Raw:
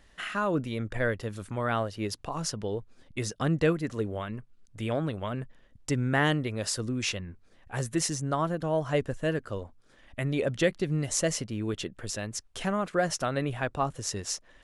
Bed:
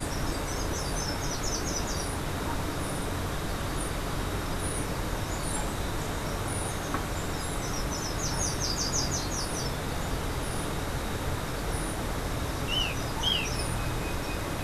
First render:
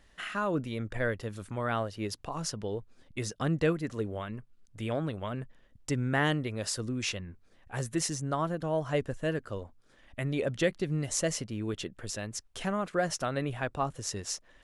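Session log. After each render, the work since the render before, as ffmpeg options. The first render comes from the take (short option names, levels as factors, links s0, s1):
-af "volume=0.75"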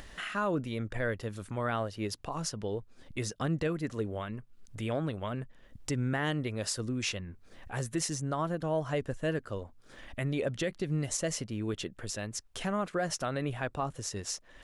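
-af "alimiter=limit=0.0841:level=0:latency=1:release=75,acompressor=mode=upward:threshold=0.0141:ratio=2.5"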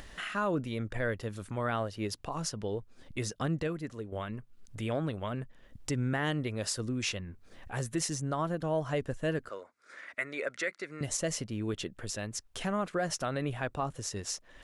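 -filter_complex "[0:a]asettb=1/sr,asplit=3[s0][s1][s2];[s0]atrim=end=9.494[s3];[s1]atrim=start=9.49:end=11.01,asetpts=PTS-STARTPTS,afade=t=in:d=0.004:c=qsin,afade=t=out:st=1.516:d=0.004:c=qsin,highpass=500,equalizer=f=800:t=q:w=4:g=-7,equalizer=f=1400:t=q:w=4:g=9,equalizer=f=2100:t=q:w=4:g=10,equalizer=f=3100:t=q:w=4:g=-9,lowpass=f=9600:w=0.5412,lowpass=f=9600:w=1.3066[s4];[s2]atrim=start=11.006[s5];[s3][s4]acrossfade=d=0.004:c1=hsin:c2=qsin[s6];[s6][s5]acrossfade=d=0.004:c1=qsin:c2=hsin,asplit=2[s7][s8];[s7]atrim=end=4.12,asetpts=PTS-STARTPTS,afade=t=out:st=3.43:d=0.69:silence=0.354813[s9];[s8]atrim=start=4.12,asetpts=PTS-STARTPTS,afade=t=in:d=0.004:c=hsin:silence=0.354813[s10];[s9][s10]concat=n=2:v=0:a=1"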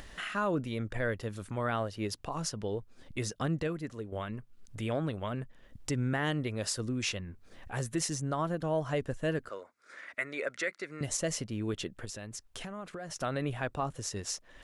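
-filter_complex "[0:a]asettb=1/sr,asplit=3[s0][s1][s2];[s0]atrim=end=12.054[s3];[s1]atrim=start=12.05:end=13.16,asetpts=PTS-STARTPTS,afade=t=in:d=0.004:c=qsin,afade=t=out:st=1.106:d=0.004:c=qsin,acompressor=threshold=0.0126:ratio=6:attack=3.2:release=140:knee=1:detection=peak[s4];[s2]atrim=start=13.156[s5];[s3][s4]acrossfade=d=0.004:c1=hsin:c2=qsin[s6];[s6][s5]acrossfade=d=0.004:c1=qsin:c2=hsin"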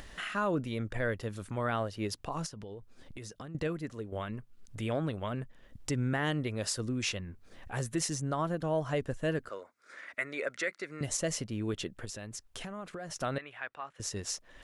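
-filter_complex "[0:a]asettb=1/sr,asplit=3[s0][s1][s2];[s0]atrim=end=2.464[s3];[s1]atrim=start=2.46:end=3.55,asetpts=PTS-STARTPTS,afade=t=in:d=0.004:c=qsin,afade=t=out:st=1.086:d=0.004:c=qsin,acompressor=threshold=0.01:ratio=12:attack=3.2:release=140:knee=1:detection=peak[s4];[s2]atrim=start=3.546[s5];[s3][s4]acrossfade=d=0.004:c1=hsin:c2=qsin[s6];[s6][s5]acrossfade=d=0.004:c1=qsin:c2=hsin,asettb=1/sr,asplit=3[s7][s8][s9];[s7]atrim=end=13.384[s10];[s8]atrim=start=13.38:end=14,asetpts=PTS-STARTPTS,afade=t=in:d=0.004:c=qsin,afade=t=out:st=0.616:d=0.004:c=qsin,bandpass=f=1900:t=q:w=1.4[s11];[s9]atrim=start=13.996[s12];[s10][s11]acrossfade=d=0.004:c1=hsin:c2=qsin[s13];[s13][s12]acrossfade=d=0.004:c1=qsin:c2=hsin"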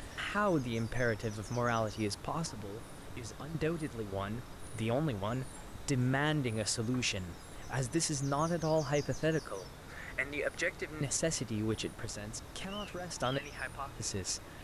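-filter_complex "[1:a]volume=0.133[s0];[0:a][s0]amix=inputs=2:normalize=0"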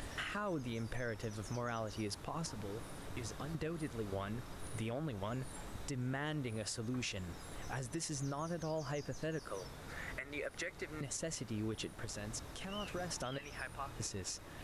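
-af "acompressor=threshold=0.0224:ratio=3,alimiter=level_in=2:limit=0.0631:level=0:latency=1:release=365,volume=0.501"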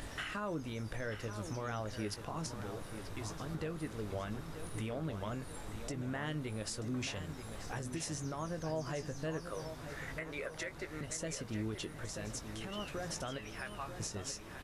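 -filter_complex "[0:a]asplit=2[s0][s1];[s1]adelay=19,volume=0.282[s2];[s0][s2]amix=inputs=2:normalize=0,asplit=2[s3][s4];[s4]adelay=934,lowpass=f=3900:p=1,volume=0.355,asplit=2[s5][s6];[s6]adelay=934,lowpass=f=3900:p=1,volume=0.49,asplit=2[s7][s8];[s8]adelay=934,lowpass=f=3900:p=1,volume=0.49,asplit=2[s9][s10];[s10]adelay=934,lowpass=f=3900:p=1,volume=0.49,asplit=2[s11][s12];[s12]adelay=934,lowpass=f=3900:p=1,volume=0.49,asplit=2[s13][s14];[s14]adelay=934,lowpass=f=3900:p=1,volume=0.49[s15];[s5][s7][s9][s11][s13][s15]amix=inputs=6:normalize=0[s16];[s3][s16]amix=inputs=2:normalize=0"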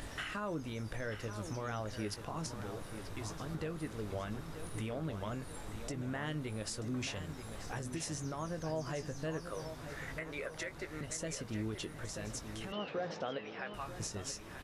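-filter_complex "[0:a]asettb=1/sr,asplit=3[s0][s1][s2];[s0]atrim=end=12.724[s3];[s1]atrim=start=12.72:end=13.74,asetpts=PTS-STARTPTS,afade=t=in:d=0.004:c=qsin,afade=t=out:st=1.016:d=0.004:c=qsin,highpass=190,equalizer=f=190:t=q:w=4:g=5,equalizer=f=480:t=q:w=4:g=9,equalizer=f=780:t=q:w=4:g=5,lowpass=f=4300:w=0.5412,lowpass=f=4300:w=1.3066[s4];[s2]atrim=start=13.736[s5];[s3][s4]acrossfade=d=0.004:c1=hsin:c2=qsin[s6];[s6][s5]acrossfade=d=0.004:c1=qsin:c2=hsin"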